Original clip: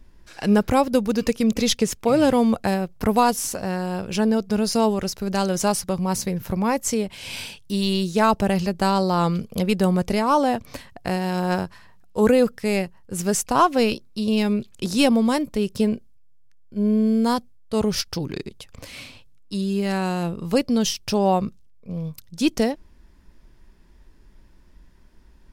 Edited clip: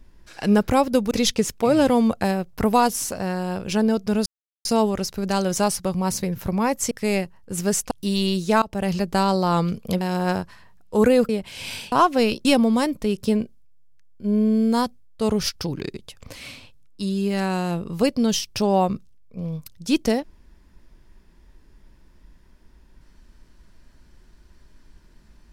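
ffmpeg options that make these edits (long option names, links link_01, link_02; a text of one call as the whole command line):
ffmpeg -i in.wav -filter_complex "[0:a]asplit=10[link_01][link_02][link_03][link_04][link_05][link_06][link_07][link_08][link_09][link_10];[link_01]atrim=end=1.112[link_11];[link_02]atrim=start=1.538:end=4.69,asetpts=PTS-STARTPTS,afade=type=out:start_time=3.148:duration=0.004:curve=hsin,apad=pad_dur=0.39[link_12];[link_03]atrim=start=4.69:end=6.952,asetpts=PTS-STARTPTS,afade=type=in:duration=0.004:curve=hsin[link_13];[link_04]atrim=start=12.518:end=13.522[link_14];[link_05]atrim=start=7.578:end=8.29,asetpts=PTS-STARTPTS,afade=type=out:start_time=0.708:duration=0.004:curve=hsin:silence=0.0707946[link_15];[link_06]atrim=start=8.29:end=9.682,asetpts=PTS-STARTPTS,afade=type=in:duration=0.33:silence=0.0707946[link_16];[link_07]atrim=start=11.238:end=12.522[link_17];[link_08]atrim=start=6.948:end=7.582[link_18];[link_09]atrim=start=13.518:end=14.052[link_19];[link_10]atrim=start=14.968[link_20];[link_12][link_13]concat=n=2:v=0:a=1[link_21];[link_11][link_21]acrossfade=duration=0.004:curve1=hsin:curve2=hsin[link_22];[link_22][link_14]acrossfade=duration=0.004:curve1=hsin:curve2=hsin[link_23];[link_15][link_16]concat=n=2:v=0:a=1[link_24];[link_23][link_24]acrossfade=duration=0.004:curve1=hsin:curve2=hsin[link_25];[link_25][link_17]acrossfade=duration=0.004:curve1=hsin:curve2=hsin[link_26];[link_26][link_18]acrossfade=duration=0.004:curve1=hsin:curve2=hsin[link_27];[link_27][link_19]acrossfade=duration=0.004:curve1=hsin:curve2=hsin[link_28];[link_28][link_20]acrossfade=duration=0.004:curve1=hsin:curve2=hsin" out.wav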